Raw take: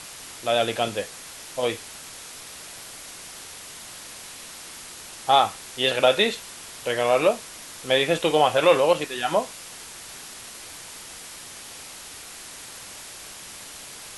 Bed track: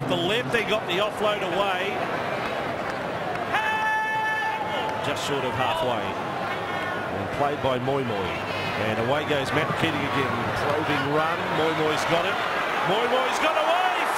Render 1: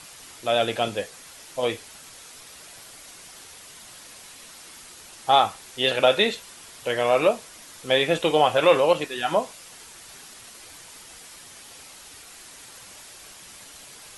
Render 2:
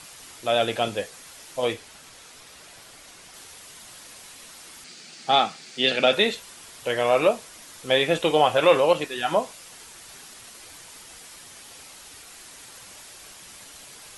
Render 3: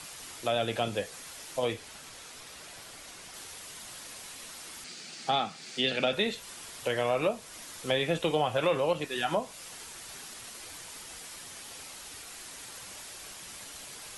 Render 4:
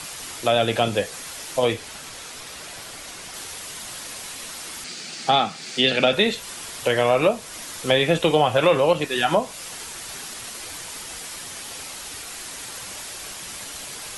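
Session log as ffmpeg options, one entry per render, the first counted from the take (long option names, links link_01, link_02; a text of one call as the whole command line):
ffmpeg -i in.wav -af "afftdn=noise_reduction=6:noise_floor=-41" out.wav
ffmpeg -i in.wav -filter_complex "[0:a]asettb=1/sr,asplit=3[link_01][link_02][link_03];[link_01]atrim=end=1.734[link_04];[link_02]atrim=start=1.73:end=3.34,asetpts=PTS-STARTPTS,afade=type=in:duration=0.004:curve=qsin,afade=type=out:start_time=1.606:duration=0.004:curve=qsin,highshelf=frequency=7000:gain=-6.5[link_05];[link_03]atrim=start=3.336[link_06];[link_04][link_05]acrossfade=duration=0.004:curve1=hsin:curve2=qsin[link_07];[link_07][link_06]acrossfade=duration=0.004:curve1=qsin:curve2=hsin,asettb=1/sr,asplit=3[link_08][link_09][link_10];[link_08]atrim=end=4.844[link_11];[link_09]atrim=start=4.84:end=6.13,asetpts=PTS-STARTPTS,afade=type=in:duration=0.004:curve=qsin,afade=type=out:start_time=1.286:duration=0.004:curve=qsin,highpass=frequency=150:width=0.5412,highpass=frequency=150:width=1.3066,equalizer=frequency=160:width_type=q:width=4:gain=9,equalizer=frequency=240:width_type=q:width=4:gain=5,equalizer=frequency=560:width_type=q:width=4:gain=-3,equalizer=frequency=990:width_type=q:width=4:gain=-9,equalizer=frequency=2300:width_type=q:width=4:gain=4,equalizer=frequency=4600:width_type=q:width=4:gain=7,lowpass=frequency=8200:width=0.5412,lowpass=frequency=8200:width=1.3066[link_12];[link_10]atrim=start=6.126[link_13];[link_11][link_12]acrossfade=duration=0.004:curve1=hsin:curve2=qsin[link_14];[link_14][link_13]acrossfade=duration=0.004:curve1=qsin:curve2=hsin" out.wav
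ffmpeg -i in.wav -filter_complex "[0:a]acrossover=split=200[link_01][link_02];[link_02]acompressor=threshold=-29dB:ratio=2.5[link_03];[link_01][link_03]amix=inputs=2:normalize=0" out.wav
ffmpeg -i in.wav -af "volume=9.5dB" out.wav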